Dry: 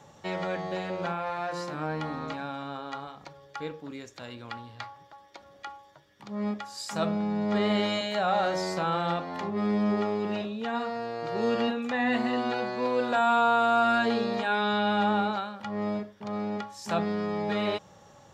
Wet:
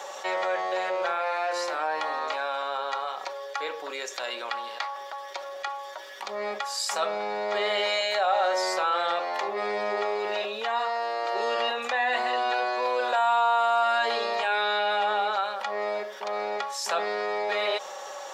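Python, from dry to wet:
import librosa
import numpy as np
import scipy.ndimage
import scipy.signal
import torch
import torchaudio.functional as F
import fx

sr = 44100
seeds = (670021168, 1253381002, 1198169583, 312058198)

y = scipy.signal.sosfilt(scipy.signal.butter(4, 500.0, 'highpass', fs=sr, output='sos'), x)
y = y + 0.39 * np.pad(y, (int(5.3 * sr / 1000.0), 0))[:len(y)]
y = fx.env_flatten(y, sr, amount_pct=50)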